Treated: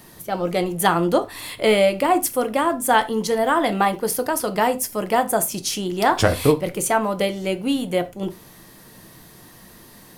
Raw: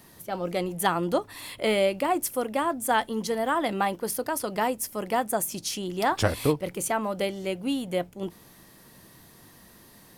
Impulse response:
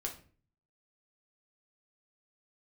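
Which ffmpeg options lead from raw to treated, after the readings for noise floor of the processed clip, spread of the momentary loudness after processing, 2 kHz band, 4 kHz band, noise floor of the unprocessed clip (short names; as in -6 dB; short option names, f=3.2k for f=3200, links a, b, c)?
-47 dBFS, 7 LU, +6.5 dB, +6.5 dB, -53 dBFS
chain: -filter_complex "[0:a]asplit=2[a][b];[1:a]atrim=start_sample=2205,afade=t=out:st=0.16:d=0.01,atrim=end_sample=7497[c];[b][c]afir=irnorm=-1:irlink=0,volume=-3dB[d];[a][d]amix=inputs=2:normalize=0,volume=2.5dB"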